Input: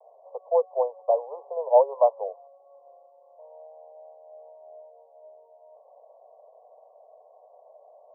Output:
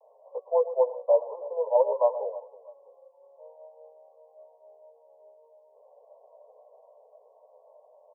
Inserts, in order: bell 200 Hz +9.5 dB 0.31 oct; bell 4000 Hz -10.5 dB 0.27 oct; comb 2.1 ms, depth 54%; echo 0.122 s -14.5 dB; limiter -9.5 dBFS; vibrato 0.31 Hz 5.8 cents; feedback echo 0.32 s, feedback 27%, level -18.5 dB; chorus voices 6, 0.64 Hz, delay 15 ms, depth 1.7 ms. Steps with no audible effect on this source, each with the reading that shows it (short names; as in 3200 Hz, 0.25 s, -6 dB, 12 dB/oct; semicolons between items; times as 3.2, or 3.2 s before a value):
bell 200 Hz: input band starts at 380 Hz; bell 4000 Hz: input band ends at 1100 Hz